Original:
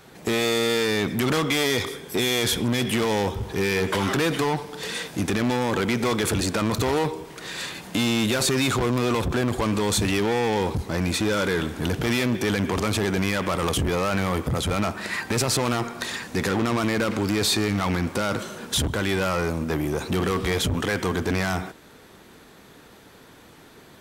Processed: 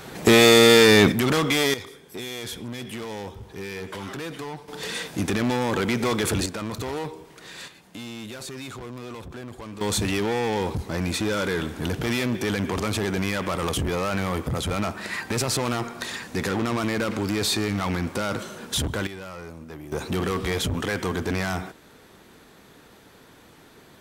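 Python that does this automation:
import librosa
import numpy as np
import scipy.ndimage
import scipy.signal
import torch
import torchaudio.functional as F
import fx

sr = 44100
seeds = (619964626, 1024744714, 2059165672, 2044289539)

y = fx.gain(x, sr, db=fx.steps((0.0, 9.0), (1.12, 1.0), (1.74, -11.0), (4.68, -0.5), (6.46, -7.5), (7.68, -14.5), (9.81, -2.0), (19.07, -14.0), (19.92, -2.0)))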